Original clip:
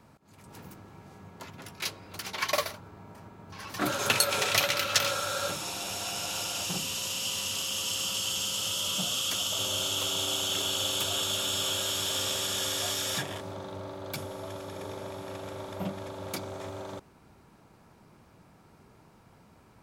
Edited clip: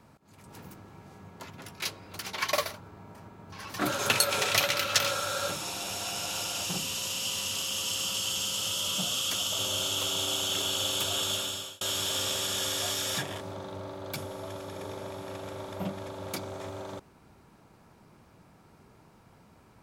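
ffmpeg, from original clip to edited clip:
-filter_complex "[0:a]asplit=2[a][b];[a]atrim=end=11.81,asetpts=PTS-STARTPTS,afade=t=out:st=11.33:d=0.48[c];[b]atrim=start=11.81,asetpts=PTS-STARTPTS,afade=t=in:d=0.004:c=hsin[d];[c][d]concat=n=2:v=0:a=1"

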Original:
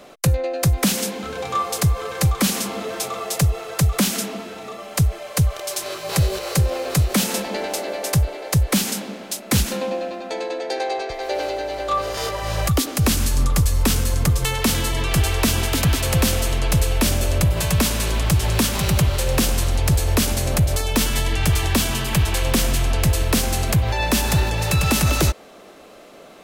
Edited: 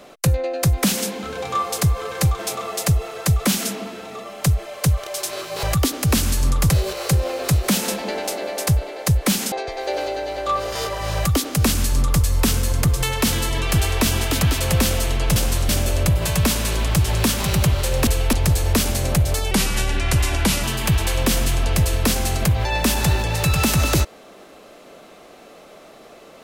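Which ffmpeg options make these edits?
-filter_complex "[0:a]asplit=11[a][b][c][d][e][f][g][h][i][j][k];[a]atrim=end=2.392[l];[b]atrim=start=2.918:end=6.162[m];[c]atrim=start=12.568:end=13.642[n];[d]atrim=start=6.158:end=8.982[o];[e]atrim=start=10.938:end=16.782[p];[f]atrim=start=19.418:end=19.752[q];[g]atrim=start=17.038:end=19.422[r];[h]atrim=start=16.778:end=17.042[s];[i]atrim=start=19.748:end=20.934[t];[j]atrim=start=20.93:end=21.91,asetpts=PTS-STARTPTS,asetrate=38367,aresample=44100[u];[k]atrim=start=21.906[v];[l][m]acrossfade=d=0.004:c1=hsin:c2=hsin[w];[w][n]acrossfade=d=0.004:c1=hsin:c2=hsin[x];[x][o]acrossfade=d=0.004:c1=hsin:c2=hsin[y];[y][p]acrossfade=d=0.004:c1=hsin:c2=hsin[z];[z][q]acrossfade=d=0.004:c1=hsin:c2=hsin[aa];[aa][r]acrossfade=d=0.004:c1=hsin:c2=hsin[ab];[ab][s]acrossfade=d=0.004:c1=hsin:c2=hsin[ac];[ac][t]acrossfade=d=0.004:c1=hsin:c2=hsin[ad];[ad][u]acrossfade=d=0.004:c1=hsin:c2=hsin[ae];[ae][v]acrossfade=d=0.004:c1=hsin:c2=hsin"

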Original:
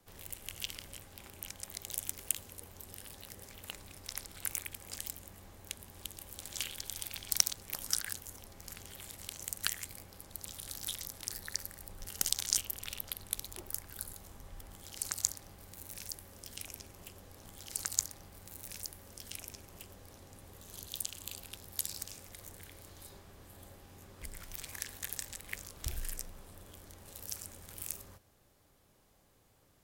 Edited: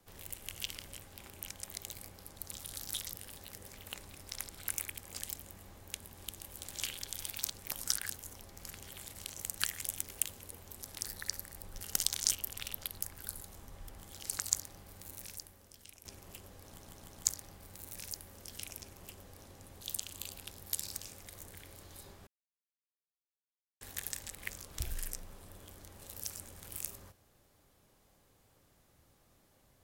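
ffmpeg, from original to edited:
-filter_complex "[0:a]asplit=15[a][b][c][d][e][f][g][h][i][j][k][l][m][n][o];[a]atrim=end=1.932[p];[b]atrim=start=9.868:end=11.082[q];[c]atrim=start=2.908:end=7.172[r];[d]atrim=start=7.428:end=9.872[s];[e]atrim=start=1.928:end=2.912[t];[f]atrim=start=11.078:end=13.282[u];[g]atrim=start=13.738:end=16.77,asetpts=PTS-STARTPTS,afade=t=out:st=2.112:d=0.92:c=qua:silence=0.281838[v];[h]atrim=start=16.77:end=17.522,asetpts=PTS-STARTPTS,afade=t=in:d=0.004:c=hsin:silence=0.281838[w];[i]atrim=start=17.368:end=17.522[x];[j]atrim=start=17.368:end=17.522[y];[k]atrim=start=17.368:end=17.522[z];[l]atrim=start=17.968:end=20.532[aa];[m]atrim=start=20.868:end=23.33,asetpts=PTS-STARTPTS,afade=t=out:st=2.458:d=0.004:c=hsin[ab];[n]atrim=start=23.33:end=24.87,asetpts=PTS-STARTPTS,volume=0[ac];[o]atrim=start=24.87,asetpts=PTS-STARTPTS,afade=t=in:d=0.004:c=hsin[ad];[p][q]acrossfade=d=0.004:c1=hsin:c2=hsin[ae];[ae][r]acrossfade=d=0.004:c1=hsin:c2=hsin[af];[af][s]acrossfade=d=0.004:c1=hsin:c2=hsin[ag];[ag][t]acrossfade=d=0.004:c1=hsin:c2=hsin[ah];[ah][u]acrossfade=d=0.004:c1=hsin:c2=hsin[ai];[v][w]concat=n=2:v=0:a=1[aj];[ai][aj]acrossfade=d=0.004:c1=hsin:c2=hsin[ak];[ak][x]acrossfade=d=0.004:c1=hsin:c2=hsin[al];[al][y]acrossfade=d=0.004:c1=hsin:c2=hsin[am];[am][z]acrossfade=d=0.004:c1=hsin:c2=hsin[an];[an][aa]acrossfade=d=0.004:c1=hsin:c2=hsin[ao];[ab][ac][ad]concat=n=3:v=0:a=1[ap];[ao][ap]acrossfade=d=0.004:c1=hsin:c2=hsin"

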